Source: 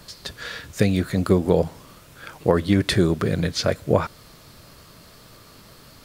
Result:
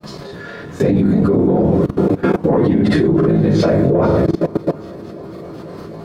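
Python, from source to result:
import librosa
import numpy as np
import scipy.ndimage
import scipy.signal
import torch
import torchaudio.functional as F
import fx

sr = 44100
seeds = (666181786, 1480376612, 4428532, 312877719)

p1 = fx.phase_scramble(x, sr, seeds[0], window_ms=50)
p2 = scipy.signal.sosfilt(scipy.signal.butter(2, 180.0, 'highpass', fs=sr, output='sos'), p1)
p3 = p2 + fx.echo_heads(p2, sr, ms=247, heads='second and third', feedback_pct=59, wet_db=-21.0, dry=0)
p4 = fx.quant_dither(p3, sr, seeds[1], bits=10, dither='none')
p5 = fx.high_shelf(p4, sr, hz=6000.0, db=-7.0)
p6 = fx.room_shoebox(p5, sr, seeds[2], volume_m3=49.0, walls='mixed', distance_m=0.79)
p7 = fx.over_compress(p6, sr, threshold_db=-21.0, ratio=-0.5)
p8 = p6 + (p7 * 10.0 ** (3.0 / 20.0))
p9 = 10.0 ** (-6.5 / 20.0) * np.tanh(p8 / 10.0 ** (-6.5 / 20.0))
p10 = fx.tilt_shelf(p9, sr, db=10.0, hz=1100.0)
p11 = fx.hum_notches(p10, sr, base_hz=60, count=9)
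p12 = fx.granulator(p11, sr, seeds[3], grain_ms=100.0, per_s=20.0, spray_ms=28.0, spread_st=0)
p13 = fx.level_steps(p12, sr, step_db=18)
y = p13 * 10.0 ** (5.0 / 20.0)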